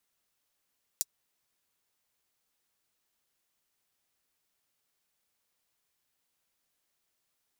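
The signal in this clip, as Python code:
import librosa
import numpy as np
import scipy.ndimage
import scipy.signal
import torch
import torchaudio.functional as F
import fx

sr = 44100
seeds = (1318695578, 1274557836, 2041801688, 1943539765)

y = fx.drum_hat(sr, length_s=0.24, from_hz=5900.0, decay_s=0.04)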